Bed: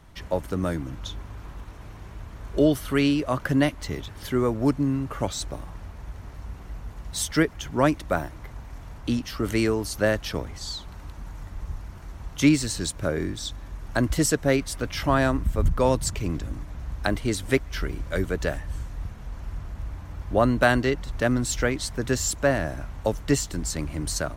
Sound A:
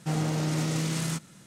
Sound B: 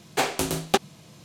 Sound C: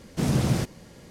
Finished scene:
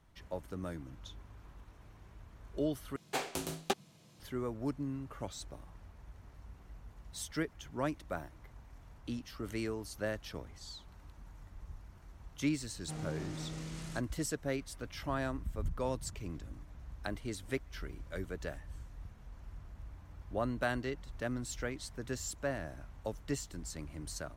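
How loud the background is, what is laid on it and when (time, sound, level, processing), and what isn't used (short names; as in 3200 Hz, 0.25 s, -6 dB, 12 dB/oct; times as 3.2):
bed -14.5 dB
2.96 replace with B -12 dB
12.82 add A -14.5 dB + high shelf 10000 Hz -8 dB
not used: C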